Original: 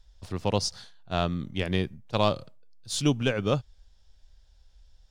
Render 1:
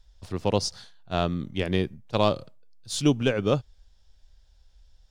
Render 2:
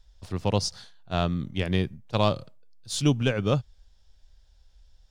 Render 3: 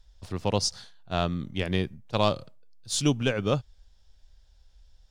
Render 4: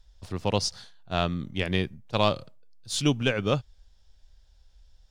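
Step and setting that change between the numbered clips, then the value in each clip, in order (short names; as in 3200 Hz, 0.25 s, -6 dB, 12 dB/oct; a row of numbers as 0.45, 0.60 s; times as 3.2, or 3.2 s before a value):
dynamic EQ, frequency: 370, 120, 7200, 2400 Hz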